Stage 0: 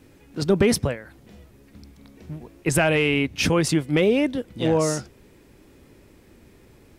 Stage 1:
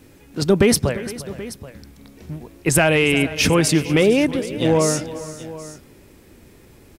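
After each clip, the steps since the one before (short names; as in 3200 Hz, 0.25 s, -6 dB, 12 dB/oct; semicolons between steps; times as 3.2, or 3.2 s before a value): high shelf 6300 Hz +5.5 dB; tapped delay 0.352/0.456/0.78 s -16.5/-18/-17 dB; gain +3.5 dB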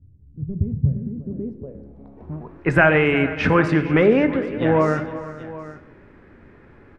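low-pass sweep 100 Hz -> 1600 Hz, 0.62–2.65; on a send at -10 dB: reverb RT60 0.90 s, pre-delay 4 ms; on the sum: gain -1 dB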